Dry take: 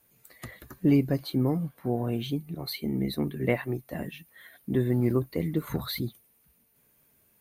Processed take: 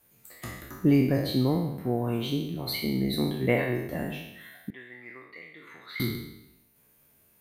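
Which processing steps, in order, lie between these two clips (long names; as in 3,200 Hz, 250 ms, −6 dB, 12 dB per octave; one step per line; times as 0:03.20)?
peak hold with a decay on every bin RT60 0.86 s
0:04.70–0:06.00: resonant band-pass 2,100 Hz, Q 3.2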